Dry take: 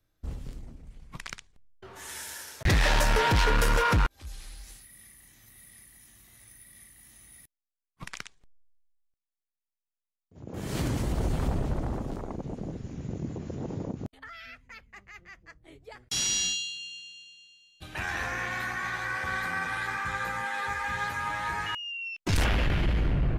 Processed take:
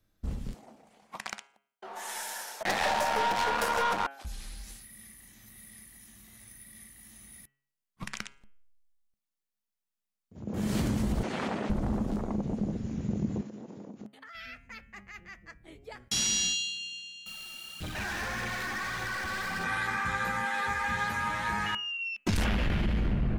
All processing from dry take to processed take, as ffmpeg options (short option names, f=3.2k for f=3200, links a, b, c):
-filter_complex "[0:a]asettb=1/sr,asplit=3[a][b][c];[a]atrim=end=0.544[d];[b]atrim=start=0.54:end=4.25,asetpts=PTS-STARTPTS,afade=t=in:d=0.004:c=qsin,afade=t=out:st=3.706:d=0.004:c=qsin,highpass=430,equalizer=f=760:w=1.7:g=12,aeval=exprs='(tanh(10*val(0)+0.25)-tanh(0.25))/10':c=same[e];[c]atrim=start=4.246[f];[d][e]acrossfade=d=0.004:c1=hsin:c2=qsin[g];[g][f]acrossfade=d=0.004:c1=qsin:c2=hsin,asettb=1/sr,asplit=3[h][i][j];[h]atrim=end=11.234[k];[i]atrim=start=11.23:end=11.7,asetpts=PTS-STARTPTS,afade=t=in:d=0.004:c=qsin,afade=t=out:st=0.466:d=0.004:c=qsin,highpass=310,lowpass=6.5k,equalizer=f=2.1k:w=0.87:g=7.5[l];[j]atrim=start=11.696[m];[k][l]acrossfade=d=0.004:c1=hsin:c2=qsin[n];[n][m]acrossfade=d=0.004:c1=qsin:c2=hsin,asettb=1/sr,asplit=3[o][p][q];[o]atrim=end=13.414[r];[p]atrim=start=13.41:end=14.35,asetpts=PTS-STARTPTS,afade=t=in:d=0.004:c=qsin,afade=t=out:st=0.936:d=0.004:c=qsin,highpass=240,acompressor=threshold=-46dB:ratio=5:attack=3.2:release=140:knee=1:detection=peak[s];[q]atrim=start=14.346[t];[r][s]acrossfade=d=0.004:c1=hsin:c2=qsin[u];[u][t]acrossfade=d=0.004:c1=qsin:c2=hsin,asettb=1/sr,asplit=3[v][w][x];[v]atrim=end=17.264[y];[w]atrim=start=17.26:end=19.64,asetpts=PTS-STARTPTS,afade=t=in:d=0.004:c=qsin,afade=t=out:st=2.376:d=0.004:c=qsin,aeval=exprs='val(0)+0.5*0.00794*sgn(val(0))':c=same,aphaser=in_gain=1:out_gain=1:delay=3.7:decay=0.47:speed=1.7:type=triangular,aeval=exprs='(tanh(44.7*val(0)+0.2)-tanh(0.2))/44.7':c=same[z];[x]atrim=start=19.636[aa];[y][z]acrossfade=d=0.004:c1=hsin:c2=qsin[ab];[ab][aa]acrossfade=d=0.004:c1=qsin:c2=hsin,equalizer=f=210:t=o:w=0.22:g=13,bandreject=f=137.8:t=h:w=4,bandreject=f=275.6:t=h:w=4,bandreject=f=413.4:t=h:w=4,bandreject=f=551.2:t=h:w=4,bandreject=f=689:t=h:w=4,bandreject=f=826.8:t=h:w=4,bandreject=f=964.6:t=h:w=4,bandreject=f=1.1024k:t=h:w=4,bandreject=f=1.2402k:t=h:w=4,bandreject=f=1.378k:t=h:w=4,bandreject=f=1.5158k:t=h:w=4,bandreject=f=1.6536k:t=h:w=4,bandreject=f=1.7914k:t=h:w=4,bandreject=f=1.9292k:t=h:w=4,bandreject=f=2.067k:t=h:w=4,bandreject=f=2.2048k:t=h:w=4,bandreject=f=2.3426k:t=h:w=4,bandreject=f=2.4804k:t=h:w=4,bandreject=f=2.6182k:t=h:w=4,bandreject=f=2.756k:t=h:w=4,bandreject=f=2.8938k:t=h:w=4,bandreject=f=3.0316k:t=h:w=4,bandreject=f=3.1694k:t=h:w=4,acompressor=threshold=-26dB:ratio=6,volume=1.5dB"